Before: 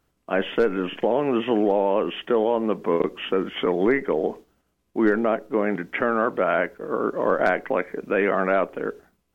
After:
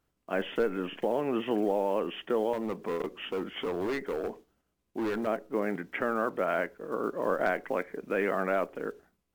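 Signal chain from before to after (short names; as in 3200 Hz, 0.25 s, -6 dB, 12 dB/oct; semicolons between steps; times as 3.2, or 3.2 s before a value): block floating point 7-bit; 2.53–5.27 overloaded stage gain 20 dB; gain -7.5 dB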